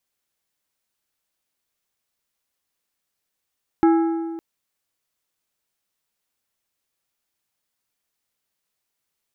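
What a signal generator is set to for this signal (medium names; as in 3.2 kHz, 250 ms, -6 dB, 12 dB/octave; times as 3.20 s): metal hit plate, length 0.56 s, lowest mode 330 Hz, decay 1.75 s, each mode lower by 8 dB, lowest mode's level -11 dB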